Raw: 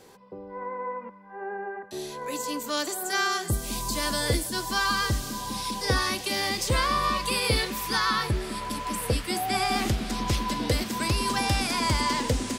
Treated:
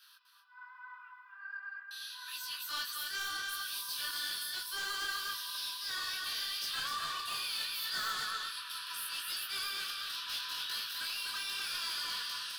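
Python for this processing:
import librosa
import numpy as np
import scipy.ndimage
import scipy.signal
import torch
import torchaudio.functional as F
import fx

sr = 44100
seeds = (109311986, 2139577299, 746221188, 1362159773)

p1 = scipy.signal.sosfilt(scipy.signal.butter(8, 1300.0, 'highpass', fs=sr, output='sos'), x)
p2 = fx.rider(p1, sr, range_db=4, speed_s=0.5)
p3 = p1 + (p2 * librosa.db_to_amplitude(-1.0))
p4 = fx.fixed_phaser(p3, sr, hz=2100.0, stages=6)
p5 = p4 + 10.0 ** (-4.5 / 20.0) * np.pad(p4, (int(251 * sr / 1000.0), 0))[:len(p4)]
p6 = 10.0 ** (-28.0 / 20.0) * np.tanh(p5 / 10.0 ** (-28.0 / 20.0))
p7 = fx.detune_double(p6, sr, cents=26)
y = p7 * librosa.db_to_amplitude(-2.0)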